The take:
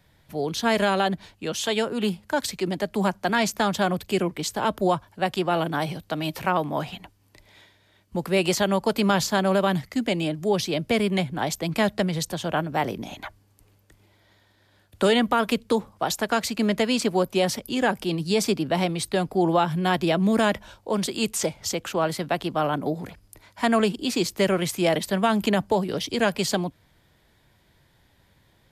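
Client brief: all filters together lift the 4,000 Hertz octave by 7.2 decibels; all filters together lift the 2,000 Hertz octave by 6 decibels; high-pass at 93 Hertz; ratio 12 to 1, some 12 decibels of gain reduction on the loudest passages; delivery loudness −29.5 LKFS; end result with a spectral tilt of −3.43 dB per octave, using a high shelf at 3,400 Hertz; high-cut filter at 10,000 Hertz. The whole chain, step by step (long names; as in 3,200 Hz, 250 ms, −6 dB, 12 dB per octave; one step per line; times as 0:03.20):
high-pass filter 93 Hz
low-pass filter 10,000 Hz
parametric band 2,000 Hz +5.5 dB
high-shelf EQ 3,400 Hz +3.5 dB
parametric band 4,000 Hz +5 dB
downward compressor 12 to 1, threshold −27 dBFS
level +2 dB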